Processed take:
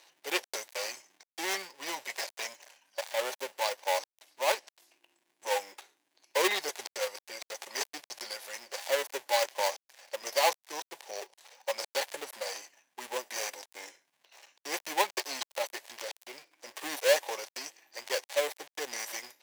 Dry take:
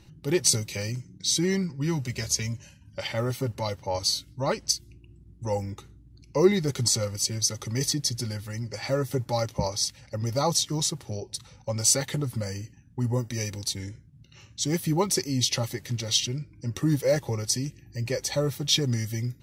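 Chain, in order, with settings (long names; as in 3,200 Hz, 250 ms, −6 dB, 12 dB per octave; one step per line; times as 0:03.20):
gap after every zero crossing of 0.25 ms
high-pass filter 600 Hz 24 dB per octave
parametric band 1,300 Hz −9.5 dB 0.31 octaves
level +4 dB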